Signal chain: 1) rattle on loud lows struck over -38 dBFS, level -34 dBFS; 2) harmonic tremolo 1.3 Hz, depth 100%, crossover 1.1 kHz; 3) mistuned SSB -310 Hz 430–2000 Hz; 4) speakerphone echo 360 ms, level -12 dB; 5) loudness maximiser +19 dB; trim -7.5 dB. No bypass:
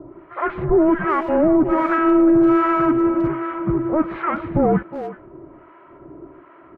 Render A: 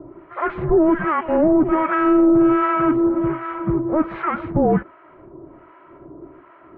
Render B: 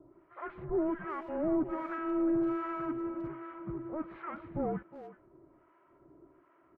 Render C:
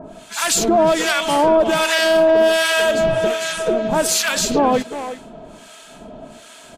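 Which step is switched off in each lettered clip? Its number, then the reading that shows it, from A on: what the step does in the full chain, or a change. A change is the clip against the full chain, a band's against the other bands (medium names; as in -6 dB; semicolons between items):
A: 4, momentary loudness spread change -1 LU; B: 5, crest factor change +4.0 dB; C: 3, 2 kHz band +10.5 dB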